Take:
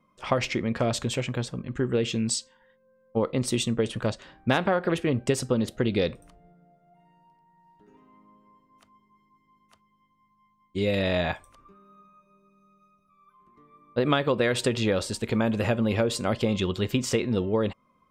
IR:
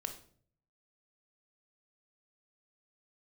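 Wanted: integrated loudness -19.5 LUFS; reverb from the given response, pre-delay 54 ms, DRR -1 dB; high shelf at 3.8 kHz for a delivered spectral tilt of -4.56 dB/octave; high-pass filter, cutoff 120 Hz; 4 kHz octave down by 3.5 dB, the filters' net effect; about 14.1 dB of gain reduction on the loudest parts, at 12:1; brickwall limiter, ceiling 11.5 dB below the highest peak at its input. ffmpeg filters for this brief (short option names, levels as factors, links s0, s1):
-filter_complex "[0:a]highpass=120,highshelf=f=3800:g=5.5,equalizer=f=4000:t=o:g=-8,acompressor=threshold=0.02:ratio=12,alimiter=level_in=2:limit=0.0631:level=0:latency=1,volume=0.501,asplit=2[s0][s1];[1:a]atrim=start_sample=2205,adelay=54[s2];[s1][s2]afir=irnorm=-1:irlink=0,volume=1.26[s3];[s0][s3]amix=inputs=2:normalize=0,volume=8.41"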